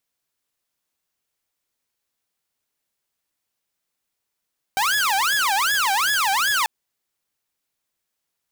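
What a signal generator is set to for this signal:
siren wail 771–1,700 Hz 2.6 per second saw −15.5 dBFS 1.89 s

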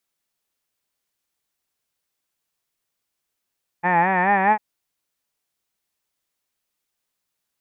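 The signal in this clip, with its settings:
vowel from formants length 0.75 s, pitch 170 Hz, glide +3.5 semitones, vibrato 4.7 Hz, F1 840 Hz, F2 1,800 Hz, F3 2,400 Hz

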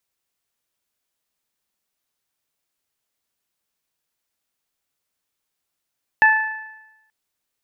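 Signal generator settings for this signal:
harmonic partials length 0.88 s, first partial 873 Hz, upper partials 5/−12.5 dB, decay 0.91 s, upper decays 0.98/0.85 s, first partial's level −14 dB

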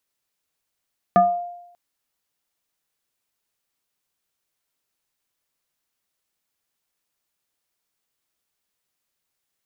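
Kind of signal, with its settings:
two-operator FM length 0.59 s, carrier 702 Hz, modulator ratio 0.73, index 0.9, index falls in 0.42 s exponential, decay 0.84 s, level −9 dB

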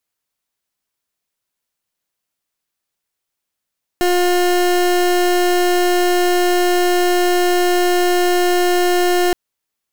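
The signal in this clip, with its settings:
pulse wave 356 Hz, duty 30% −14.5 dBFS 5.32 s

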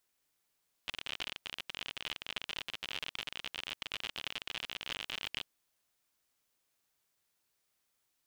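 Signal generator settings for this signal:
Geiger counter clicks 59 per second −22.5 dBFS 4.56 s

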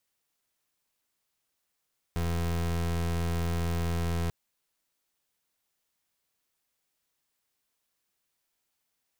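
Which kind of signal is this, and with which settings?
pulse wave 84.4 Hz, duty 29% −29 dBFS 2.14 s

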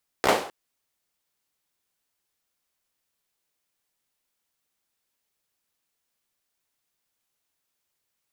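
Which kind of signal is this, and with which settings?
synth clap length 0.26 s, apart 15 ms, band 580 Hz, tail 0.47 s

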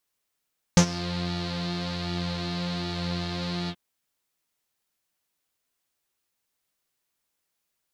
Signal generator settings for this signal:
subtractive patch with pulse-width modulation F3, oscillator 2 saw, interval −12 semitones, detune 21 cents, oscillator 2 level −1.5 dB, noise −10 dB, filter lowpass, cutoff 3,200 Hz, Q 5.1, filter envelope 1 octave, attack 1.4 ms, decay 0.08 s, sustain −17 dB, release 0.06 s, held 2.92 s, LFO 1.3 Hz, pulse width 49%, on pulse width 16%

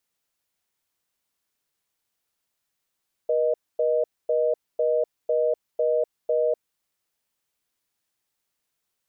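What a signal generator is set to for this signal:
call progress tone reorder tone, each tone −22 dBFS 3.43 s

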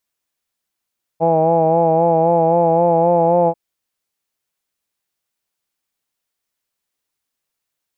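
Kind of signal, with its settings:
vowel by formant synthesis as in hawed, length 2.34 s, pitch 162 Hz, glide +1 semitone, vibrato 3.8 Hz, vibrato depth 0.45 semitones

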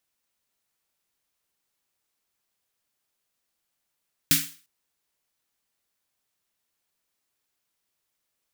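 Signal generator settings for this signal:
synth snare length 0.35 s, tones 160 Hz, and 280 Hz, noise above 1,600 Hz, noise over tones 9 dB, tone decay 0.31 s, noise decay 0.39 s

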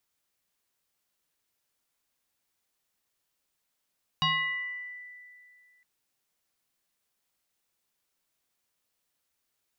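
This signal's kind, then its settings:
two-operator FM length 1.61 s, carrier 1,980 Hz, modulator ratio 0.46, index 2.3, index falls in 1.14 s exponential, decay 2.33 s, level −21.5 dB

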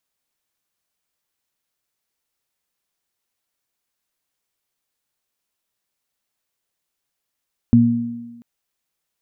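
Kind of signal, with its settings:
harmonic partials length 0.69 s, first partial 118 Hz, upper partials 5 dB, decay 0.89 s, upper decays 1.24 s, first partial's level −12.5 dB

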